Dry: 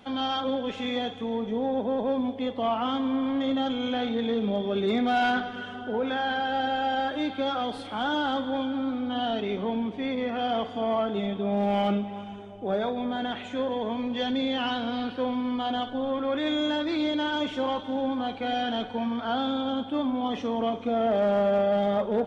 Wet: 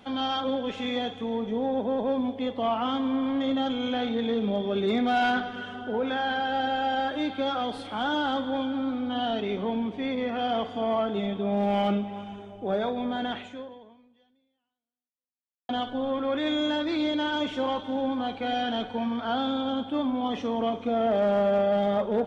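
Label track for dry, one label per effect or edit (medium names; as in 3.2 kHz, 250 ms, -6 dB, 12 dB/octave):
13.360000	15.690000	fade out exponential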